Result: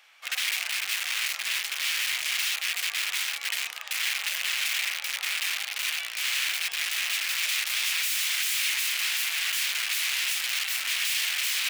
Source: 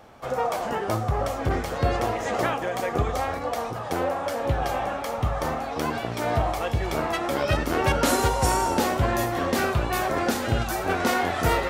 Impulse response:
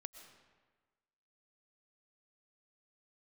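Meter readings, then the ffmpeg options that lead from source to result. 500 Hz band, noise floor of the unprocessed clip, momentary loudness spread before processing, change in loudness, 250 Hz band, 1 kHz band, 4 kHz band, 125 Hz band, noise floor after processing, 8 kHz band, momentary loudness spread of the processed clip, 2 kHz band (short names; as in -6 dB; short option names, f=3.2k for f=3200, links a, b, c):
-32.5 dB, -32 dBFS, 6 LU, -0.5 dB, under -40 dB, -18.0 dB, +10.0 dB, under -40 dB, -38 dBFS, +6.5 dB, 4 LU, +3.5 dB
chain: -af "aeval=exprs='(mod(15*val(0)+1,2)-1)/15':c=same,highpass=f=2.4k:t=q:w=2"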